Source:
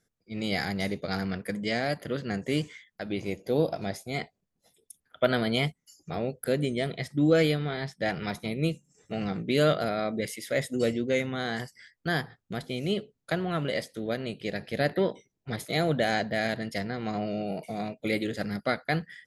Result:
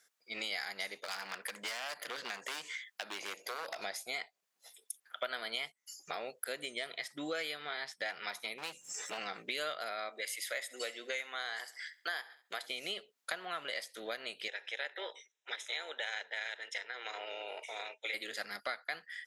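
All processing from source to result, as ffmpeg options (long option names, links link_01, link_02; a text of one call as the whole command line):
ffmpeg -i in.wav -filter_complex "[0:a]asettb=1/sr,asplit=3[link_01][link_02][link_03];[link_01]atrim=end=0.954[link_04];[link_02]atrim=start=0.95:end=3.8,asetpts=PTS-STARTPTS,afade=type=in:duration=0.004:curve=qsin,afade=type=out:start_time=2.846:duration=0.004:curve=qsin,lowshelf=frequency=80:gain=-10.5,acompressor=threshold=-33dB:ratio=2:attack=3.2:release=140:knee=1:detection=peak,aeval=exprs='0.0282*(abs(mod(val(0)/0.0282+3,4)-2)-1)':channel_layout=same[link_05];[link_03]atrim=start=3.796[link_06];[link_04][link_05]acrossfade=duration=0.004:curve1=hsin:curve2=qsin[link_07];[link_07][link_06]acrossfade=duration=0.004:curve1=qsin:curve2=hsin,asettb=1/sr,asplit=3[link_08][link_09][link_10];[link_08]atrim=end=8.584[link_11];[link_09]atrim=start=8.58:end=9.18,asetpts=PTS-STARTPTS,afade=type=in:duration=0.004:curve=qsin,afade=type=out:start_time=0.596:duration=0.004:curve=qsin,highpass=frequency=54:width=0.5412,highpass=frequency=54:width=1.3066,acompressor=mode=upward:threshold=-31dB:ratio=2.5:attack=3.2:release=140:knee=2.83:detection=peak,volume=31.5dB,asoftclip=hard,volume=-31.5dB[link_12];[link_10]atrim=start=9.176[link_13];[link_11][link_12]acrossfade=duration=0.004:curve1=hsin:curve2=qsin[link_14];[link_14][link_13]acrossfade=duration=0.004:curve1=qsin:curve2=hsin,asettb=1/sr,asplit=3[link_15][link_16][link_17];[link_15]atrim=end=10.094[link_18];[link_16]atrim=start=10.09:end=12.67,asetpts=PTS-STARTPTS,afade=type=in:duration=0.004:curve=qsin,afade=type=out:start_time=2.576:duration=0.004:curve=qsin,highpass=390,bandreject=frequency=5600:width=16,aecho=1:1:68|136|204:0.0891|0.0374|0.0157,atrim=end_sample=113778[link_19];[link_17]atrim=start=12.666[link_20];[link_18][link_19]acrossfade=duration=0.004:curve1=hsin:curve2=qsin[link_21];[link_21][link_20]acrossfade=duration=0.004:curve1=qsin:curve2=hsin,asettb=1/sr,asplit=3[link_22][link_23][link_24];[link_22]atrim=end=14.484[link_25];[link_23]atrim=start=14.48:end=18.14,asetpts=PTS-STARTPTS,afade=type=in:duration=0.004:curve=qsin,afade=type=out:start_time=3.656:duration=0.004:curve=qsin,tremolo=f=240:d=0.519,asuperstop=centerf=4500:order=4:qfactor=2.9,highpass=frequency=410:width=0.5412,highpass=frequency=410:width=1.3066,equalizer=frequency=690:width_type=q:width=4:gain=-9,equalizer=frequency=1100:width_type=q:width=4:gain=-8,equalizer=frequency=3900:width_type=q:width=4:gain=6,lowpass=frequency=7400:width=0.5412,lowpass=frequency=7400:width=1.3066[link_26];[link_24]atrim=start=18.136[link_27];[link_25][link_26]acrossfade=duration=0.004:curve1=hsin:curve2=qsin[link_28];[link_28][link_27]acrossfade=duration=0.004:curve1=qsin:curve2=hsin,highpass=1000,acompressor=threshold=-48dB:ratio=4,volume=9.5dB" out.wav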